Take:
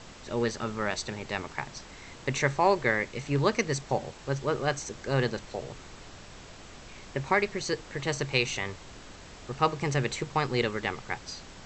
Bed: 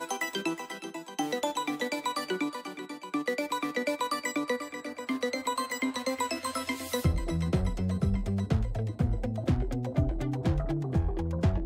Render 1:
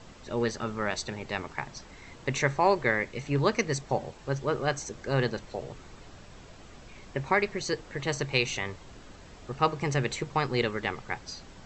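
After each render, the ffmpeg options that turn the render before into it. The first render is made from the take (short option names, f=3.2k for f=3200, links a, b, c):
-af "afftdn=nr=6:nf=-48"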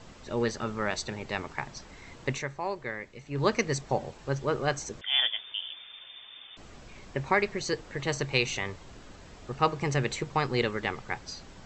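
-filter_complex "[0:a]asettb=1/sr,asplit=3[a][b][c];[a]atrim=end=5.014[d];[b]atrim=start=5.01:end=6.57,asetpts=PTS-STARTPTS,afade=t=in:d=0.004:c=qsin,afade=t=out:st=1.556:d=0.004:c=qsin,lowpass=f=3.1k:t=q:w=0.5098,lowpass=f=3.1k:t=q:w=0.6013,lowpass=f=3.1k:t=q:w=0.9,lowpass=f=3.1k:t=q:w=2.563,afreqshift=-3600[e];[c]atrim=start=6.566[f];[d][e]acrossfade=d=0.004:c1=hsin:c2=qsin[g];[g][f]acrossfade=d=0.004:c1=qsin:c2=hsin,asplit=3[h][i][j];[h]atrim=end=2.5,asetpts=PTS-STARTPTS,afade=t=out:st=2.3:d=0.2:c=qua:silence=0.316228[k];[i]atrim=start=2.5:end=3.25,asetpts=PTS-STARTPTS,volume=-10dB[l];[j]atrim=start=3.25,asetpts=PTS-STARTPTS,afade=t=in:d=0.2:c=qua:silence=0.316228[m];[k][l][m]concat=n=3:v=0:a=1"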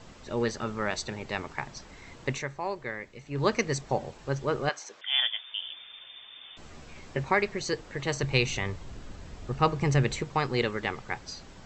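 -filter_complex "[0:a]asettb=1/sr,asplit=3[a][b][c];[a]atrim=end=4.694[d];[b]atrim=start=4.69:end=5.53,asetpts=PTS-STARTPTS,afade=t=in:d=0.004:c=qsin,afade=t=out:st=0.836:d=0.004:c=qsin,highpass=710,lowpass=5.3k[e];[c]atrim=start=5.526[f];[d][e]acrossfade=d=0.004:c1=hsin:c2=qsin[g];[g][f]acrossfade=d=0.004:c1=qsin:c2=hsin,asettb=1/sr,asplit=3[h][i][j];[h]atrim=end=6.424[k];[i]atrim=start=6.42:end=7.24,asetpts=PTS-STARTPTS,afade=t=in:d=0.004:c=qsin,afade=t=out:st=0.816:d=0.004:c=qsin,asplit=2[l][m];[m]adelay=13,volume=-4dB[n];[l][n]amix=inputs=2:normalize=0,atrim=end_sample=36162[o];[j]atrim=start=7.236[p];[k][o]acrossfade=d=0.004:c1=hsin:c2=qsin[q];[q][p]acrossfade=d=0.004:c1=qsin:c2=hsin,asettb=1/sr,asplit=3[r][s][t];[r]atrim=end=8.234[u];[s]atrim=start=8.23:end=10.22,asetpts=PTS-STARTPTS,afade=t=in:d=0.004:c=qsin,afade=t=out:st=1.986:d=0.004:c=qsin,lowshelf=f=180:g=9[v];[t]atrim=start=10.216[w];[u][v]acrossfade=d=0.004:c1=hsin:c2=qsin[x];[x][w]acrossfade=d=0.004:c1=qsin:c2=hsin"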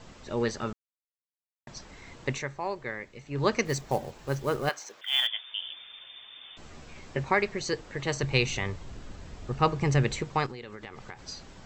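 -filter_complex "[0:a]asettb=1/sr,asplit=3[a][b][c];[a]atrim=end=3.654[d];[b]atrim=start=3.65:end=5.27,asetpts=PTS-STARTPTS,afade=t=in:d=0.004:c=qsin,afade=t=out:st=1.616:d=0.004:c=qsin,acrusher=bits=5:mode=log:mix=0:aa=0.000001[e];[c]atrim=start=5.266[f];[d][e]acrossfade=d=0.004:c1=hsin:c2=qsin[g];[g][f]acrossfade=d=0.004:c1=qsin:c2=hsin,asettb=1/sr,asplit=3[h][i][j];[h]atrim=end=10.464[k];[i]atrim=start=10.46:end=11.19,asetpts=PTS-STARTPTS,afade=t=in:d=0.004:c=qsin,afade=t=out:st=0.726:d=0.004:c=qsin,acompressor=threshold=-37dB:ratio=16:attack=3.2:release=140:knee=1:detection=peak[l];[j]atrim=start=11.186[m];[k][l]acrossfade=d=0.004:c1=hsin:c2=qsin[n];[n][m]acrossfade=d=0.004:c1=qsin:c2=hsin,asplit=3[o][p][q];[o]atrim=end=0.73,asetpts=PTS-STARTPTS,afade=t=out:st=0.726:d=0.004:c=hsin[r];[p]atrim=start=0.73:end=1.67,asetpts=PTS-STARTPTS,volume=0[s];[q]atrim=start=1.67,asetpts=PTS-STARTPTS,afade=t=in:d=0.004:c=hsin[t];[r][s][t]concat=n=3:v=0:a=1"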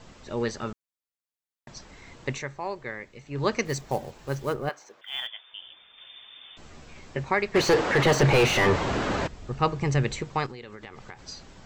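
-filter_complex "[0:a]asplit=3[a][b][c];[a]afade=t=out:st=4.52:d=0.02[d];[b]highshelf=f=2.1k:g=-11,afade=t=in:st=4.52:d=0.02,afade=t=out:st=5.97:d=0.02[e];[c]afade=t=in:st=5.97:d=0.02[f];[d][e][f]amix=inputs=3:normalize=0,asplit=3[g][h][i];[g]afade=t=out:st=7.54:d=0.02[j];[h]asplit=2[k][l];[l]highpass=f=720:p=1,volume=37dB,asoftclip=type=tanh:threshold=-9dB[m];[k][m]amix=inputs=2:normalize=0,lowpass=f=1.1k:p=1,volume=-6dB,afade=t=in:st=7.54:d=0.02,afade=t=out:st=9.26:d=0.02[n];[i]afade=t=in:st=9.26:d=0.02[o];[j][n][o]amix=inputs=3:normalize=0"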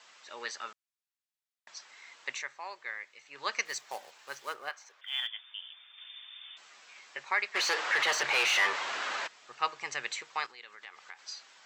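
-af "highpass=1.3k,highshelf=f=10k:g=-8"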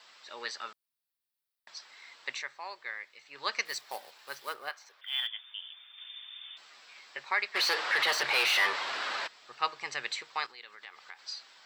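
-af "aexciter=amount=1.1:drive=5.5:freq=3.7k"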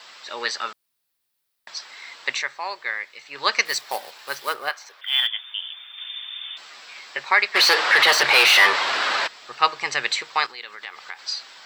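-af "volume=12dB"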